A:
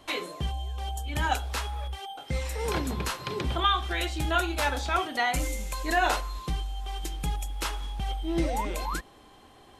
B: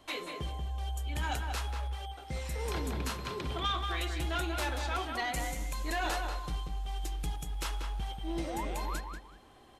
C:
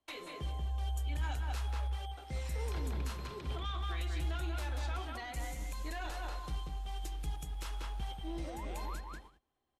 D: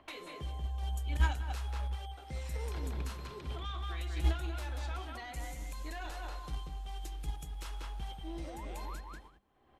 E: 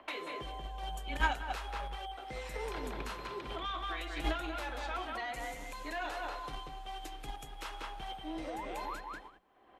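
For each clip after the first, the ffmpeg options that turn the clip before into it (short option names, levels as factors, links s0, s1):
-filter_complex "[0:a]acrossover=split=2900[s0][s1];[s0]asoftclip=type=tanh:threshold=0.0596[s2];[s2][s1]amix=inputs=2:normalize=0,asplit=2[s3][s4];[s4]adelay=187,lowpass=f=2800:p=1,volume=0.596,asplit=2[s5][s6];[s6]adelay=187,lowpass=f=2800:p=1,volume=0.24,asplit=2[s7][s8];[s8]adelay=187,lowpass=f=2800:p=1,volume=0.24[s9];[s3][s5][s7][s9]amix=inputs=4:normalize=0,volume=0.531"
-filter_complex "[0:a]agate=range=0.0631:threshold=0.00316:ratio=16:detection=peak,acrossover=split=120[s0][s1];[s0]asplit=2[s2][s3];[s3]adelay=14,volume=0.596[s4];[s2][s4]amix=inputs=2:normalize=0[s5];[s1]alimiter=level_in=2.51:limit=0.0631:level=0:latency=1:release=170,volume=0.398[s6];[s5][s6]amix=inputs=2:normalize=0,volume=0.708"
-filter_complex "[0:a]agate=range=0.251:threshold=0.0224:ratio=16:detection=peak,bandreject=f=99.26:t=h:w=4,bandreject=f=198.52:t=h:w=4,acrossover=split=3000[s0][s1];[s0]acompressor=mode=upward:threshold=0.002:ratio=2.5[s2];[s2][s1]amix=inputs=2:normalize=0,volume=3.35"
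-af "bass=f=250:g=-14,treble=f=4000:g=-9,afreqshift=-14,volume=2.24"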